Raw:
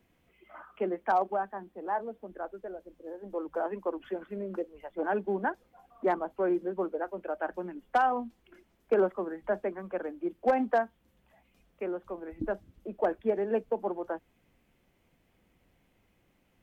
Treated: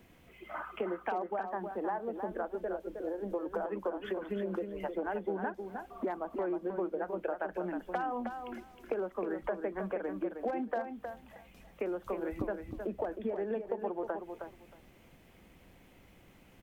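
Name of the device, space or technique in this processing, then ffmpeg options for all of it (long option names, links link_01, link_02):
serial compression, peaks first: -filter_complex "[0:a]acompressor=threshold=-36dB:ratio=6,acompressor=threshold=-45dB:ratio=2,asettb=1/sr,asplit=3[link_01][link_02][link_03];[link_01]atrim=end=11.924[link_04];[link_02]atrim=start=11.92:end=12.47,asetpts=PTS-STARTPTS,afade=type=in:duration=0.004:curve=qsin,afade=type=out:start_time=0.546:duration=0.004:curve=qsin,highshelf=frequency=3700:gain=8[link_05];[link_03]atrim=start=12.466[link_06];[link_04][link_05]acrossfade=duration=0.004:curve1=hsin:curve2=qsin[link_07];[link_07][link_06]acrossfade=duration=0.004:curve1=qsin:curve2=hsin,aecho=1:1:314|628|942:0.447|0.0759|0.0129,volume=9dB"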